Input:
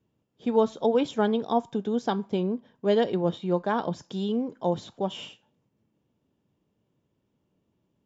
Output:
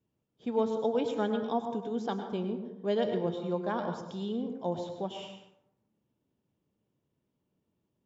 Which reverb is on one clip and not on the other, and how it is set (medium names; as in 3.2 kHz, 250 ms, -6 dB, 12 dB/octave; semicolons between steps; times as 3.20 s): plate-style reverb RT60 0.83 s, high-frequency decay 0.5×, pre-delay 90 ms, DRR 6 dB; trim -7 dB